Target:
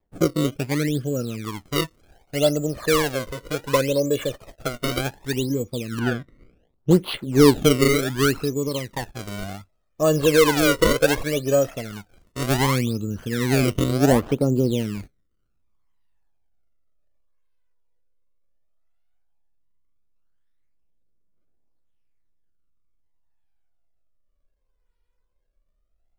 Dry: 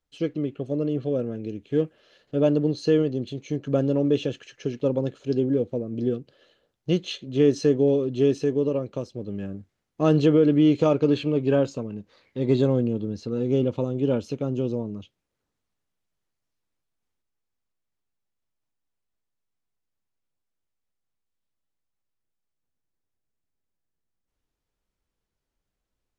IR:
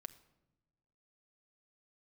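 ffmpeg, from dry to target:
-filter_complex "[0:a]acrusher=samples=30:mix=1:aa=0.000001:lfo=1:lforange=48:lforate=0.67,asubboost=boost=2:cutoff=64,aphaser=in_gain=1:out_gain=1:delay=2.1:decay=0.6:speed=0.14:type=triangular,asettb=1/sr,asplit=3[link_01][link_02][link_03];[link_01]atrim=end=5.994[link_04];[link_02]atrim=start=5.99:end=6.91,asetpts=PTS-STARTPTS,afade=type=in:duration=0.004:curve=qsin,afade=type=out:start_time=0.916:duration=0.004:curve=qsin,bass=frequency=250:gain=1,treble=frequency=4000:gain=-14[link_05];[link_03]atrim=start=6.906[link_06];[link_04][link_05]acrossfade=duration=0.004:curve1=hsin:curve2=qsin[link_07];[link_07][link_06]acrossfade=duration=0.004:curve1=qsin:curve2=hsin,volume=1dB"

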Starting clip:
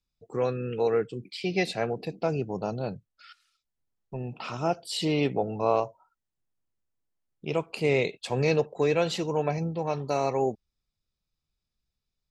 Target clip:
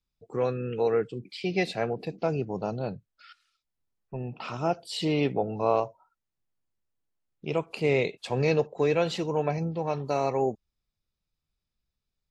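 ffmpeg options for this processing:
ffmpeg -i in.wav -af "highshelf=frequency=6900:gain=-8.5" -ar 44100 -c:a wmav2 -b:a 128k out.wma

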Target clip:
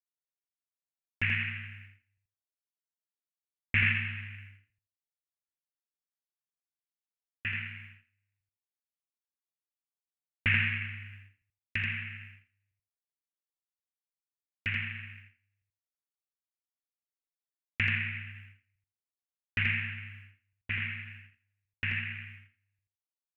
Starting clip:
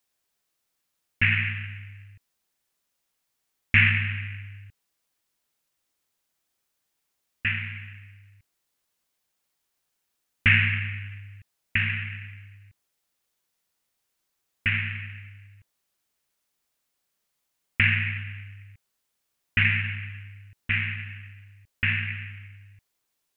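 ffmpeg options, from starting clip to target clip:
ffmpeg -i in.wav -filter_complex "[0:a]agate=range=-22dB:threshold=-40dB:ratio=16:detection=peak,asplit=2[link_01][link_02];[link_02]aecho=0:1:83|166|249:0.631|0.107|0.0182[link_03];[link_01][link_03]amix=inputs=2:normalize=0,volume=-8.5dB" out.wav

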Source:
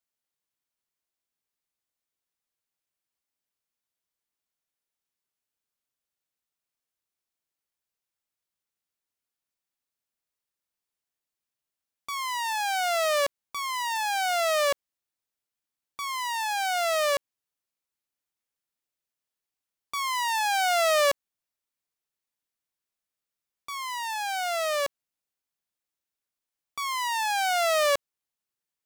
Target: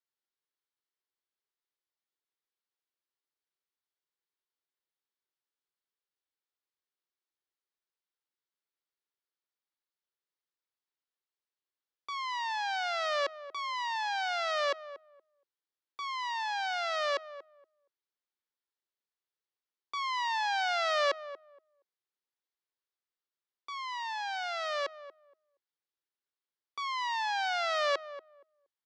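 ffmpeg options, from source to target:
ffmpeg -i in.wav -filter_complex "[0:a]highpass=frequency=340:width=0.5412,highpass=frequency=340:width=1.3066,equalizer=frequency=360:width_type=q:width=4:gain=4,equalizer=frequency=660:width_type=q:width=4:gain=-7,equalizer=frequency=2500:width_type=q:width=4:gain=-5,lowpass=frequency=4900:width=0.5412,lowpass=frequency=4900:width=1.3066,asplit=2[link_01][link_02];[link_02]adelay=235,lowpass=frequency=1000:poles=1,volume=-12dB,asplit=2[link_03][link_04];[link_04]adelay=235,lowpass=frequency=1000:poles=1,volume=0.2,asplit=2[link_05][link_06];[link_06]adelay=235,lowpass=frequency=1000:poles=1,volume=0.2[link_07];[link_03][link_05][link_07]amix=inputs=3:normalize=0[link_08];[link_01][link_08]amix=inputs=2:normalize=0,volume=-3.5dB" out.wav

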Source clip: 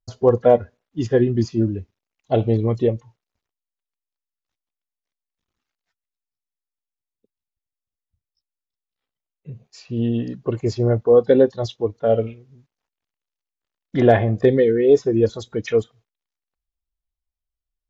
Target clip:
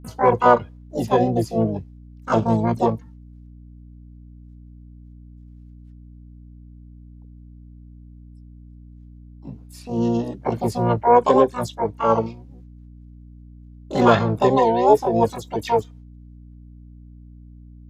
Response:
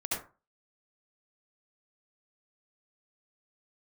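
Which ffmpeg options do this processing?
-filter_complex "[0:a]asplit=3[link_01][link_02][link_03];[link_02]asetrate=66075,aresample=44100,atempo=0.66742,volume=-5dB[link_04];[link_03]asetrate=88200,aresample=44100,atempo=0.5,volume=-2dB[link_05];[link_01][link_04][link_05]amix=inputs=3:normalize=0,aeval=exprs='val(0)+0.0126*(sin(2*PI*60*n/s)+sin(2*PI*2*60*n/s)/2+sin(2*PI*3*60*n/s)/3+sin(2*PI*4*60*n/s)/4+sin(2*PI*5*60*n/s)/5)':channel_layout=same,volume=-3.5dB"

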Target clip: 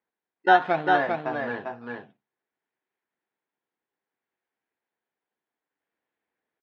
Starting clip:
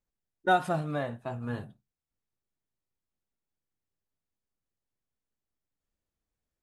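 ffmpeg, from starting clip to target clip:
ffmpeg -i in.wav -filter_complex "[0:a]asplit=2[link_01][link_02];[link_02]acrusher=samples=13:mix=1:aa=0.000001:lfo=1:lforange=13:lforate=0.62,volume=-4dB[link_03];[link_01][link_03]amix=inputs=2:normalize=0,highpass=420,equalizer=frequency=580:width_type=q:width=4:gain=-7,equalizer=frequency=1200:width_type=q:width=4:gain=-6,equalizer=frequency=1700:width_type=q:width=4:gain=3,equalizer=frequency=2800:width_type=q:width=4:gain=-4,lowpass=frequency=3000:width=0.5412,lowpass=frequency=3000:width=1.3066,aecho=1:1:398:0.631,volume=6.5dB" out.wav

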